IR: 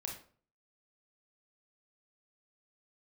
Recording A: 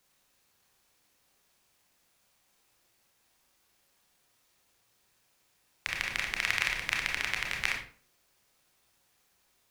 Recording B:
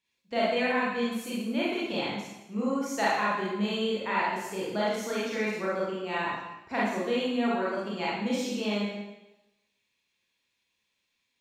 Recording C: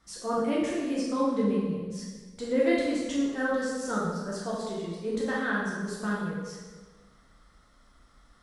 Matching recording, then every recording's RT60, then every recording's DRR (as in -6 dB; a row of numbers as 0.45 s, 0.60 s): A; 0.45 s, 0.95 s, 1.4 s; 0.0 dB, -7.5 dB, -6.0 dB